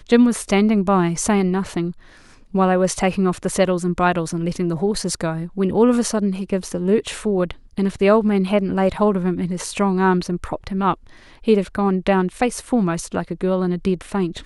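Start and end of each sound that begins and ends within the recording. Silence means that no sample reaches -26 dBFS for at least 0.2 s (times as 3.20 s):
2.54–7.51 s
7.78–10.94 s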